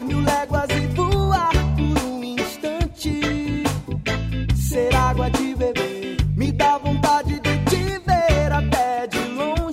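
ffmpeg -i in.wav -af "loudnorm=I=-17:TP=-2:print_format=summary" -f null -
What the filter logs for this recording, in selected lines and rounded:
Input Integrated:    -20.8 LUFS
Input True Peak:      -7.8 dBTP
Input LRA:             2.1 LU
Input Threshold:     -30.8 LUFS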